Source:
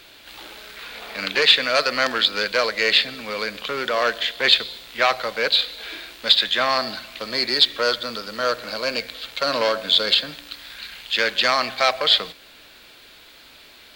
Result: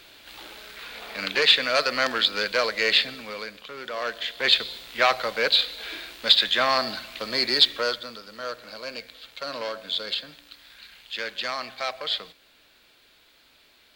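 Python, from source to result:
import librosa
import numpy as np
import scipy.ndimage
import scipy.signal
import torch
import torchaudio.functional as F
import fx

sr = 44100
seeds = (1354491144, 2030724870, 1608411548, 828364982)

y = fx.gain(x, sr, db=fx.line((3.09, -3.0), (3.68, -13.0), (4.71, -1.5), (7.67, -1.5), (8.19, -11.0)))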